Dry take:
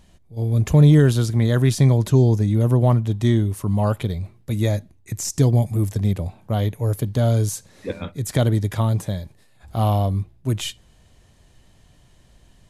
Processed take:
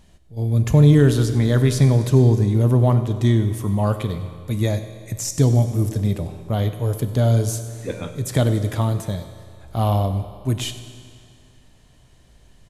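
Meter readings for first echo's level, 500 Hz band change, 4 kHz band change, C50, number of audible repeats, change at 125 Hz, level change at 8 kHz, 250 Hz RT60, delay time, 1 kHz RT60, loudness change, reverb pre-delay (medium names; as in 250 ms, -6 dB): -18.5 dB, +1.0 dB, +0.5 dB, 9.5 dB, 1, +0.5 dB, +0.5 dB, 2.2 s, 96 ms, 2.2 s, +0.5 dB, 5 ms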